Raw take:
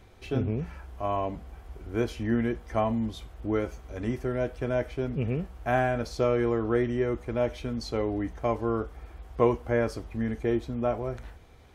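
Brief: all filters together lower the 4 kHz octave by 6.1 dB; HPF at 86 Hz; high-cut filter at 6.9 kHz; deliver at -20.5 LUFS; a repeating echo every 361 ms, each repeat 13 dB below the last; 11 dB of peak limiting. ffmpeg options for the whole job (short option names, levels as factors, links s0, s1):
-af "highpass=86,lowpass=6900,equalizer=f=4000:t=o:g=-7.5,alimiter=limit=0.106:level=0:latency=1,aecho=1:1:361|722|1083:0.224|0.0493|0.0108,volume=3.76"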